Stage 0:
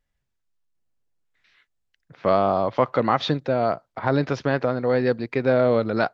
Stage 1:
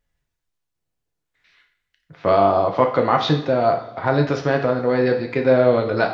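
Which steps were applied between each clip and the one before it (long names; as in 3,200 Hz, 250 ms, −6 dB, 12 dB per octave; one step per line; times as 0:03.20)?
coupled-rooms reverb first 0.57 s, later 3.9 s, from −27 dB, DRR 2.5 dB
level +1.5 dB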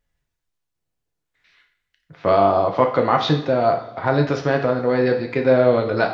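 no processing that can be heard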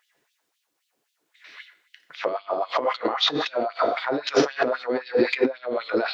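compressor whose output falls as the input rises −28 dBFS, ratio −1
auto-filter high-pass sine 3.8 Hz 280–3,500 Hz
level +2.5 dB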